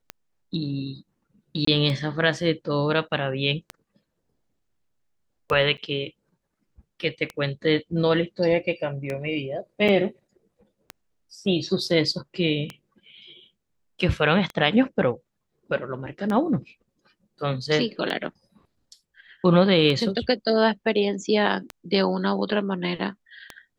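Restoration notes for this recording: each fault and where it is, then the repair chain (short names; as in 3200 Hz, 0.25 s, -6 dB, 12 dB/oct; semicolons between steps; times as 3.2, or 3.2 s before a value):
tick 33 1/3 rpm -16 dBFS
1.65–1.67 gap 24 ms
5.77–5.78 gap 9 ms
9.88–9.89 gap 6.4 ms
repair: de-click; interpolate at 1.65, 24 ms; interpolate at 5.77, 9 ms; interpolate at 9.88, 6.4 ms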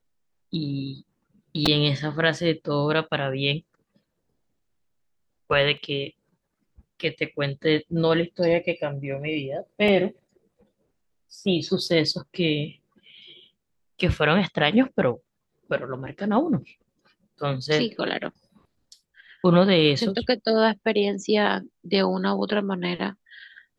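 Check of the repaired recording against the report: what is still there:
none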